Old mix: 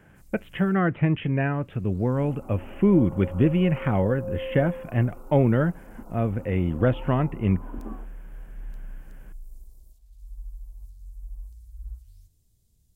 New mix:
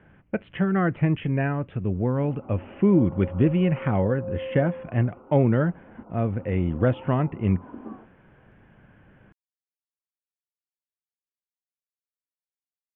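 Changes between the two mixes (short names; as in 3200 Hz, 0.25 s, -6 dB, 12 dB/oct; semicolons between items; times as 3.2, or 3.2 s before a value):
first sound: muted; master: add high shelf 4800 Hz -9 dB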